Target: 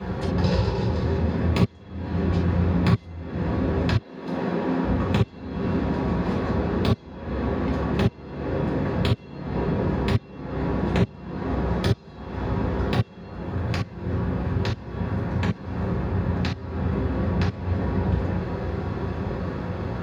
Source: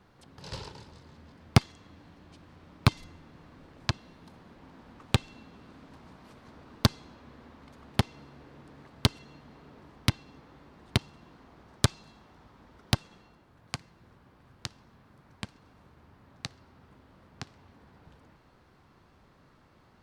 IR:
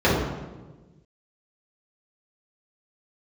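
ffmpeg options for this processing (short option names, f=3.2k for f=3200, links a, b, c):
-filter_complex "[0:a]asettb=1/sr,asplit=3[a][b][c];[a]atrim=end=3.964[d];[b]atrim=start=3.96:end=4.83,asetpts=PTS-STARTPTS,afade=t=in:d=0.004:c=qsin,afade=t=out:st=0.866:d=0.004:c=qsin,highpass=240[e];[c]atrim=start=4.826[f];[d][e]acrossfade=d=0.004:c1=hsin:c2=qsin[g];[g][f]acrossfade=d=0.004:c1=qsin:c2=hsin,acompressor=threshold=-52dB:ratio=6[h];[1:a]atrim=start_sample=2205,atrim=end_sample=3528[i];[h][i]afir=irnorm=-1:irlink=0,volume=7.5dB"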